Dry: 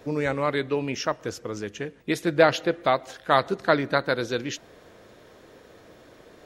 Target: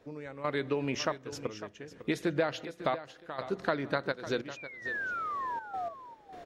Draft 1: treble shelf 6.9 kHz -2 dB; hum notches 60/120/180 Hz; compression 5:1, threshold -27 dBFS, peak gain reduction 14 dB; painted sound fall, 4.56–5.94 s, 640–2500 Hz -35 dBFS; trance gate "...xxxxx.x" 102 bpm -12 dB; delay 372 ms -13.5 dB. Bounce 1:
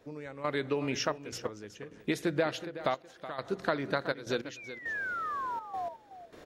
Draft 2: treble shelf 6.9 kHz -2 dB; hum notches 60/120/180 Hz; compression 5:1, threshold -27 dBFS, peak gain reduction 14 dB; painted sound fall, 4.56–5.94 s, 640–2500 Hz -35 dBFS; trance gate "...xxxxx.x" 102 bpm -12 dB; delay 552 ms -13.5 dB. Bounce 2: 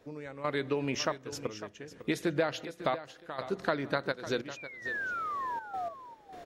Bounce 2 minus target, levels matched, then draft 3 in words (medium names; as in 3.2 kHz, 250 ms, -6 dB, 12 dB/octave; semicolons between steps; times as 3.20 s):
8 kHz band +2.5 dB
treble shelf 6.9 kHz -8.5 dB; hum notches 60/120/180 Hz; compression 5:1, threshold -27 dBFS, peak gain reduction 13.5 dB; painted sound fall, 4.56–5.94 s, 640–2500 Hz -35 dBFS; trance gate "...xxxxx.x" 102 bpm -12 dB; delay 552 ms -13.5 dB